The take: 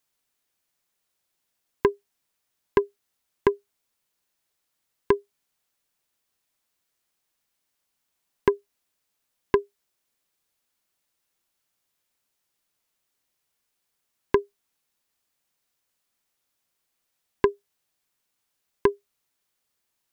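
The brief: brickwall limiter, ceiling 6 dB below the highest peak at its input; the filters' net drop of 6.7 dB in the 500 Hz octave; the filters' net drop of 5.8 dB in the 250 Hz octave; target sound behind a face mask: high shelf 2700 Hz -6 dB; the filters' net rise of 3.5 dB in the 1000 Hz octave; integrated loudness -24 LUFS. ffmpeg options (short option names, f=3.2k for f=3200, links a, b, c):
-af "equalizer=f=250:t=o:g=-4.5,equalizer=f=500:t=o:g=-8,equalizer=f=1k:t=o:g=6,alimiter=limit=-12dB:level=0:latency=1,highshelf=f=2.7k:g=-6,volume=12dB"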